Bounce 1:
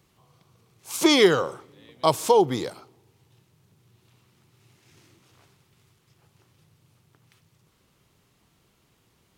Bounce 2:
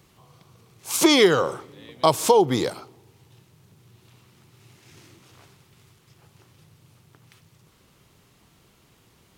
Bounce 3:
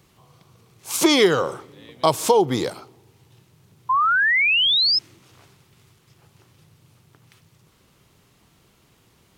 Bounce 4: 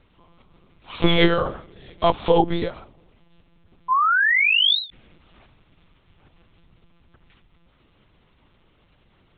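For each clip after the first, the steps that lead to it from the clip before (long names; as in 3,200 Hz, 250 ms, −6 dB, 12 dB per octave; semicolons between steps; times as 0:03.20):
downward compressor 2 to 1, threshold −23 dBFS, peak gain reduction 7 dB; level +6.5 dB
sound drawn into the spectrogram rise, 0:03.89–0:04.99, 1,000–5,300 Hz −18 dBFS
one-pitch LPC vocoder at 8 kHz 170 Hz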